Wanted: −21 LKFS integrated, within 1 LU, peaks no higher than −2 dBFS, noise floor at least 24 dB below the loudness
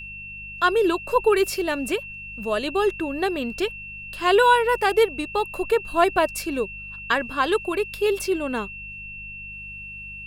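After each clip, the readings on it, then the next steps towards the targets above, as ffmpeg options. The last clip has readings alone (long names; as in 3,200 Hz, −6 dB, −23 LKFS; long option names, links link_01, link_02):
mains hum 50 Hz; hum harmonics up to 200 Hz; level of the hum −44 dBFS; interfering tone 2,700 Hz; level of the tone −35 dBFS; integrated loudness −22.5 LKFS; sample peak −5.5 dBFS; target loudness −21.0 LKFS
→ -af "bandreject=frequency=50:width_type=h:width=4,bandreject=frequency=100:width_type=h:width=4,bandreject=frequency=150:width_type=h:width=4,bandreject=frequency=200:width_type=h:width=4"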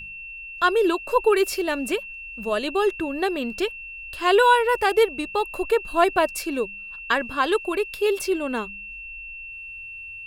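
mains hum none found; interfering tone 2,700 Hz; level of the tone −35 dBFS
→ -af "bandreject=frequency=2700:width=30"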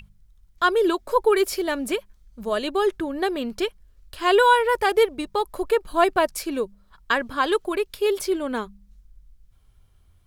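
interfering tone none found; integrated loudness −23.0 LKFS; sample peak −5.5 dBFS; target loudness −21.0 LKFS
→ -af "volume=2dB"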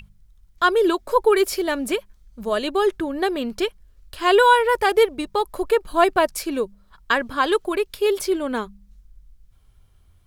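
integrated loudness −21.0 LKFS; sample peak −3.5 dBFS; background noise floor −56 dBFS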